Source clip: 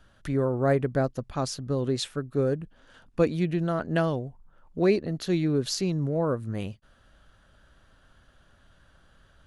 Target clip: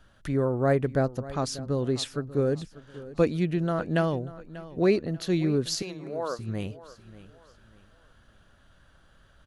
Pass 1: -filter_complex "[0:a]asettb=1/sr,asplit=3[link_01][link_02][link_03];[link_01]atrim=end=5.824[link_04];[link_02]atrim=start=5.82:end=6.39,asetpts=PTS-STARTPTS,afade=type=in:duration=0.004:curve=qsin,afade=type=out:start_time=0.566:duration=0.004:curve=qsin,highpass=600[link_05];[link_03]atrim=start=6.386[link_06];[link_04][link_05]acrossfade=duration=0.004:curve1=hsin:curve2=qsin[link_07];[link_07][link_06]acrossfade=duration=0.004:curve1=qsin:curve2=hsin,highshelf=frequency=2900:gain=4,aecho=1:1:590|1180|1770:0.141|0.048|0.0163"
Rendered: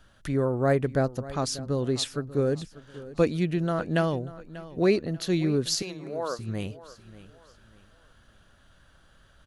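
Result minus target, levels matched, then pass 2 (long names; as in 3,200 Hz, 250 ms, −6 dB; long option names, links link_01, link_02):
8,000 Hz band +3.0 dB
-filter_complex "[0:a]asettb=1/sr,asplit=3[link_01][link_02][link_03];[link_01]atrim=end=5.824[link_04];[link_02]atrim=start=5.82:end=6.39,asetpts=PTS-STARTPTS,afade=type=in:duration=0.004:curve=qsin,afade=type=out:start_time=0.566:duration=0.004:curve=qsin,highpass=600[link_05];[link_03]atrim=start=6.386[link_06];[link_04][link_05]acrossfade=duration=0.004:curve1=hsin:curve2=qsin[link_07];[link_07][link_06]acrossfade=duration=0.004:curve1=qsin:curve2=hsin,aecho=1:1:590|1180|1770:0.141|0.048|0.0163"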